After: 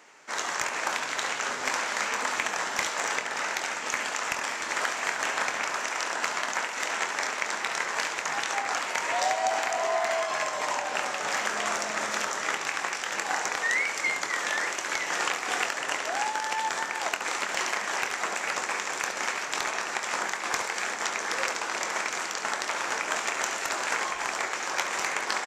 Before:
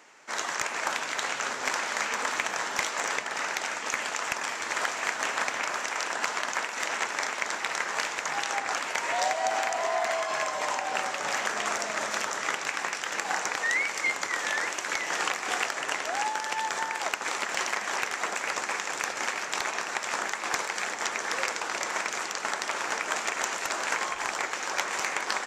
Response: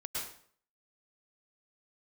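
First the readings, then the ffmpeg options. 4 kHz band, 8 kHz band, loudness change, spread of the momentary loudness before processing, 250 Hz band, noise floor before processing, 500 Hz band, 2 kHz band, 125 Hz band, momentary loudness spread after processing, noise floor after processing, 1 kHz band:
+0.5 dB, +1.0 dB, +0.5 dB, 3 LU, +1.0 dB, -36 dBFS, +1.0 dB, +0.5 dB, n/a, 3 LU, -35 dBFS, +0.5 dB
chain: -af "aecho=1:1:24|70:0.299|0.316"

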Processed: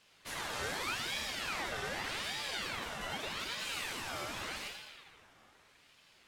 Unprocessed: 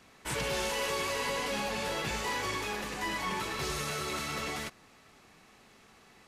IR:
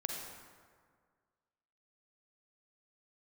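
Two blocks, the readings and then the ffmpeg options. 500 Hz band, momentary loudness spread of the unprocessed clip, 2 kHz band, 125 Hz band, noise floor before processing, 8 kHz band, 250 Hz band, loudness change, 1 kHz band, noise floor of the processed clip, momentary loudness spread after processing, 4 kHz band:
-9.5 dB, 4 LU, -3.0 dB, -9.0 dB, -60 dBFS, -5.5 dB, -9.0 dB, -4.5 dB, -6.5 dB, -65 dBFS, 6 LU, -1.5 dB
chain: -filter_complex "[1:a]atrim=start_sample=2205[a];[0:a][a]afir=irnorm=-1:irlink=0,aeval=exprs='val(0)*sin(2*PI*1900*n/s+1900*0.5/0.83*sin(2*PI*0.83*n/s))':c=same,volume=-4dB"

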